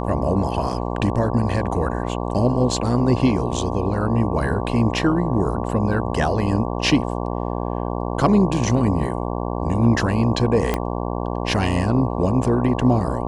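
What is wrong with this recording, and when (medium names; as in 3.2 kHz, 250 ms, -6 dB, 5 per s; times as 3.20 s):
buzz 60 Hz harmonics 19 -25 dBFS
10.74 s: pop -7 dBFS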